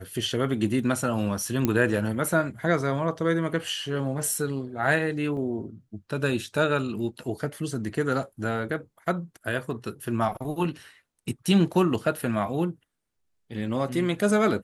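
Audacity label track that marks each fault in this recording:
1.650000	1.650000	pop -10 dBFS
5.370000	5.370000	gap 2.9 ms

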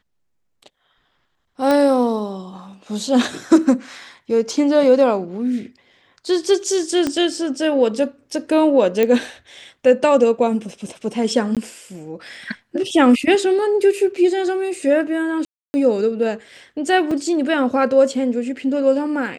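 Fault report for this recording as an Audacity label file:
1.710000	1.710000	pop -7 dBFS
7.070000	7.070000	pop -8 dBFS
9.030000	9.030000	pop -6 dBFS
11.550000	11.570000	gap 17 ms
15.450000	15.740000	gap 0.29 s
17.110000	17.110000	gap 3.8 ms

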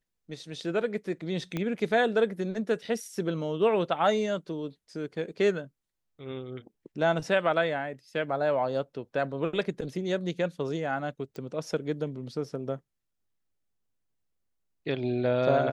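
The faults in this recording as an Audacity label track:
1.570000	1.570000	pop -18 dBFS
11.360000	11.360000	pop -28 dBFS

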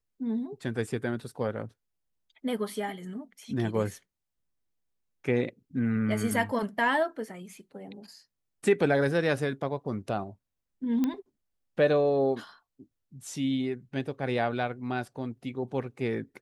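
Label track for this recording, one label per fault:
11.040000	11.040000	pop -16 dBFS

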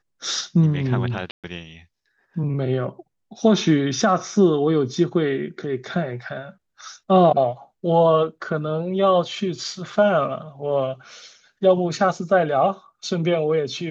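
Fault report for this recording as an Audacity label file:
1.310000	1.440000	gap 0.127 s

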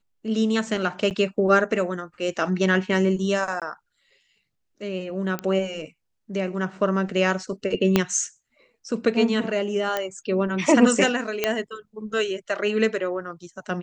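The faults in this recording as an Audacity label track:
1.100000	1.110000	gap 8.5 ms
3.600000	3.620000	gap 17 ms
5.390000	5.390000	pop -13 dBFS
7.960000	7.960000	pop -4 dBFS
9.970000	9.970000	pop -11 dBFS
11.440000	11.440000	pop -6 dBFS

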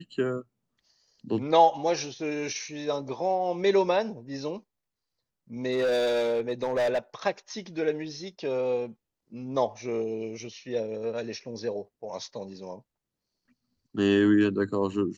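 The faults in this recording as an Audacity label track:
5.710000	6.990000	clipped -22 dBFS

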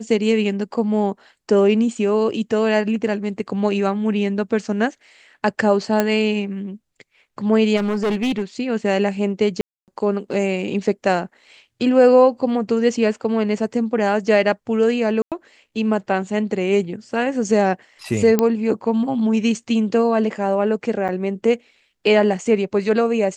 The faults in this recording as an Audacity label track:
6.000000	6.000000	pop -4 dBFS
7.760000	8.430000	clipped -17 dBFS
9.610000	9.880000	gap 0.268 s
15.220000	15.320000	gap 97 ms
18.390000	18.390000	pop -4 dBFS
21.080000	21.090000	gap 7 ms

